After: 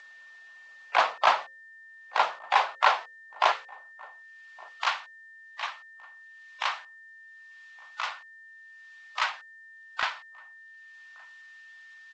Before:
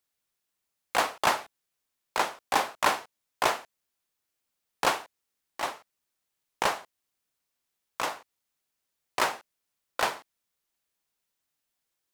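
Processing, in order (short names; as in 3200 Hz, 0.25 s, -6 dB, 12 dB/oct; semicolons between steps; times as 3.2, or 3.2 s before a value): bin magnitudes rounded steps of 15 dB; HPF 75 Hz 12 dB/oct, from 2.29 s 420 Hz, from 3.52 s 1400 Hz; three-band isolator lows -20 dB, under 550 Hz, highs -20 dB, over 4100 Hz; notches 60/120/180/240/300/360/420/480/540 Hz; upward compressor, threshold -48 dBFS; whine 1800 Hz -53 dBFS; outdoor echo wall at 200 m, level -24 dB; gain +5 dB; G.722 64 kbps 16000 Hz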